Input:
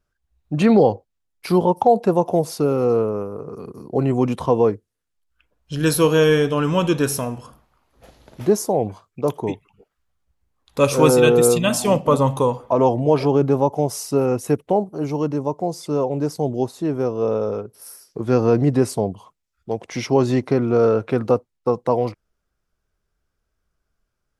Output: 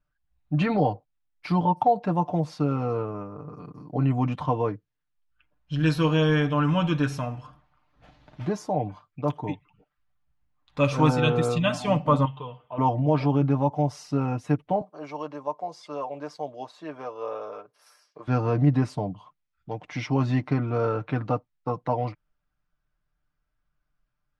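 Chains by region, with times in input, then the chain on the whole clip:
12.25–12.78 s: four-pole ladder low-pass 3.2 kHz, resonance 80% + peaking EQ 420 Hz +6 dB 0.56 oct + comb of notches 280 Hz
14.81–18.28 s: high-pass 490 Hz + comb 1.8 ms, depth 30%
whole clip: low-pass 3.3 kHz 12 dB/octave; peaking EQ 430 Hz -12 dB 0.65 oct; comb 6.7 ms; trim -4 dB

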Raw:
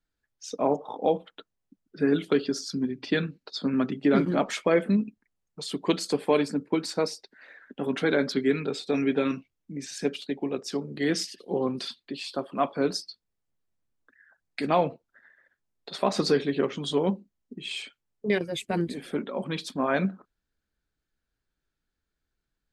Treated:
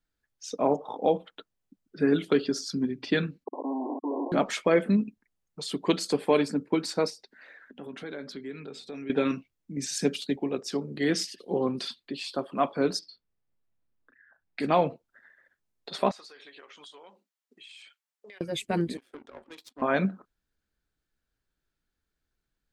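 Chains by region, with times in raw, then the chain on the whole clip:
3.44–4.32 s: compression 2.5:1, threshold -23 dBFS + Schmitt trigger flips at -38 dBFS + brick-wall FIR band-pass 250–1100 Hz
7.10–9.10 s: hum notches 60/120/180/240 Hz + compression 2:1, threshold -47 dBFS
9.77–10.36 s: high-pass 160 Hz 6 dB/octave + tone controls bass +10 dB, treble +8 dB
12.99–14.60 s: distance through air 210 m + doubling 35 ms -8 dB
16.11–18.41 s: high-pass 950 Hz + compression 10:1, threshold -46 dBFS
18.97–19.82 s: steep high-pass 230 Hz 96 dB/octave + power-law waveshaper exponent 2 + compression 3:1, threshold -42 dBFS
whole clip: none

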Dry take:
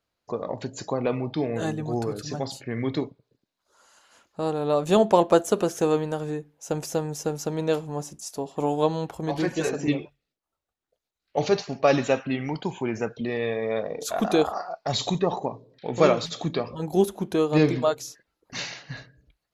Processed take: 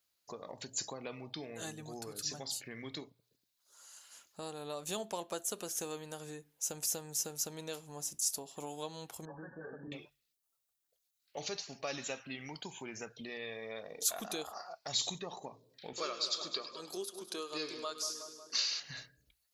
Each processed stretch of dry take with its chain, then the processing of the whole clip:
9.25–9.92 s: compression 2:1, threshold -29 dBFS + brick-wall FIR low-pass 1.8 kHz + comb of notches 350 Hz
15.93–18.80 s: cabinet simulation 370–9700 Hz, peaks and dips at 380 Hz +5 dB, 790 Hz -8 dB, 1.2 kHz +7 dB, 2 kHz -6 dB, 4.7 kHz +9 dB, 6.9 kHz -4 dB + two-band feedback delay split 1.2 kHz, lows 183 ms, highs 102 ms, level -12 dB
whole clip: compression 2:1, threshold -35 dBFS; pre-emphasis filter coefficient 0.9; hum notches 60/120 Hz; trim +7 dB

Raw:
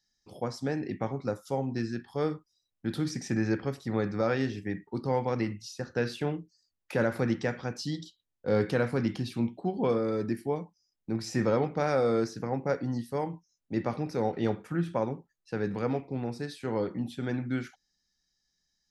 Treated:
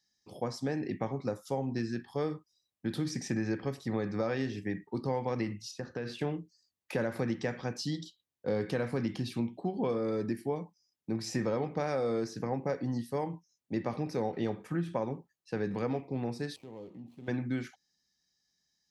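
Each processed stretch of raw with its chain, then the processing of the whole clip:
5.71–6.19 s: low-pass 3.4 kHz 6 dB/octave + compression 10:1, threshold -31 dBFS + tape noise reduction on one side only encoder only
16.56–17.28 s: median filter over 25 samples + peaking EQ 1.5 kHz -10 dB 0.59 oct + compression 2:1, threshold -55 dBFS
whole clip: high-pass 82 Hz; band-stop 1.4 kHz, Q 9.7; compression 4:1, threshold -28 dBFS

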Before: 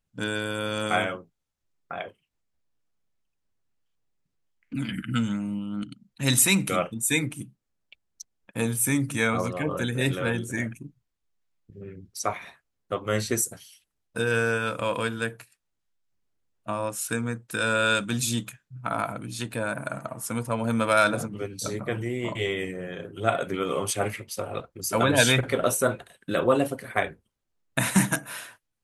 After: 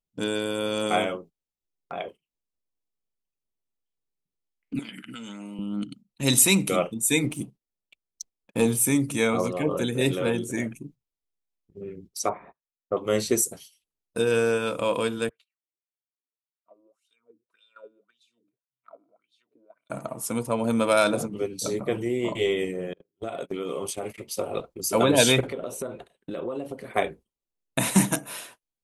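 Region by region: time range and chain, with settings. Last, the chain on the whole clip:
4.79–5.59 s: frequency weighting A + compression 4:1, threshold -36 dBFS
7.24–8.83 s: treble shelf 9.1 kHz -5.5 dB + waveshaping leveller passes 1
12.29–12.97 s: low-pass 1.5 kHz 24 dB/octave + gate -54 dBFS, range -16 dB
15.29–19.90 s: compression 2.5:1, threshold -38 dBFS + wah-wah 1.8 Hz 290–3600 Hz, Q 7.8 + comb of notches 840 Hz
22.93–24.18 s: gate -33 dBFS, range -33 dB + compression, threshold -30 dBFS + tape noise reduction on one side only decoder only
25.47–26.94 s: treble shelf 4.6 kHz -12 dB + compression, threshold -32 dBFS
whole clip: gate -47 dBFS, range -12 dB; fifteen-band graphic EQ 100 Hz -9 dB, 400 Hz +4 dB, 1.6 kHz -9 dB; trim +2 dB

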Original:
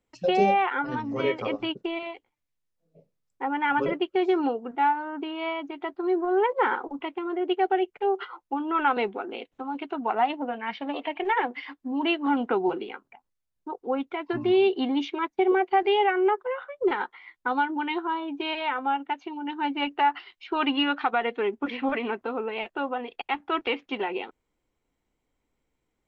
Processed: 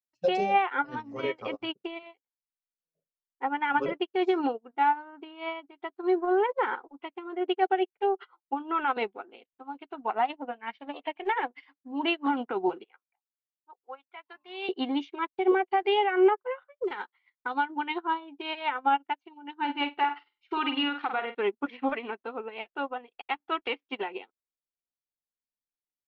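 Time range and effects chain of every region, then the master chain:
12.84–14.69 s: level-controlled noise filter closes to 2.4 kHz, open at -19.5 dBFS + high-pass 830 Hz
16.84–17.54 s: treble shelf 2.8 kHz +8 dB + compression 2.5:1, threshold -27 dBFS
19.56–21.35 s: band-stop 620 Hz, Q 8.8 + flutter echo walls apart 8.3 m, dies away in 0.39 s
whole clip: bass shelf 340 Hz -5 dB; peak limiter -20 dBFS; upward expansion 2.5:1, over -47 dBFS; trim +7 dB

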